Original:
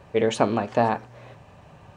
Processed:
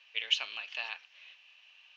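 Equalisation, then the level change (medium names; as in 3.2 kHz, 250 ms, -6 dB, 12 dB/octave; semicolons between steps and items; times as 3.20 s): resonant high-pass 2.8 kHz, resonance Q 5; steep low-pass 6.2 kHz 48 dB/octave; -5.5 dB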